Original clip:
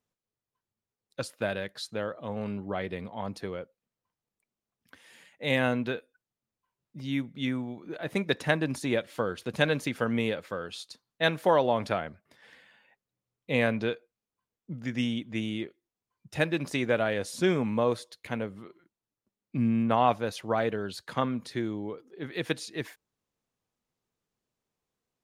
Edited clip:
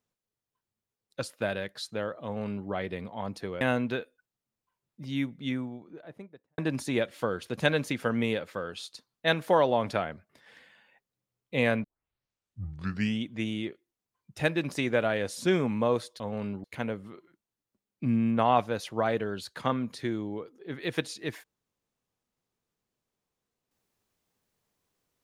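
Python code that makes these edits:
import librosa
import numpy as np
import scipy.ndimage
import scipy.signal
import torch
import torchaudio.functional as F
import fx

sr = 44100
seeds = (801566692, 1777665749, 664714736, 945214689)

y = fx.studio_fade_out(x, sr, start_s=7.17, length_s=1.37)
y = fx.edit(y, sr, fx.duplicate(start_s=2.24, length_s=0.44, to_s=18.16),
    fx.cut(start_s=3.61, length_s=1.96),
    fx.tape_start(start_s=13.8, length_s=1.39), tone=tone)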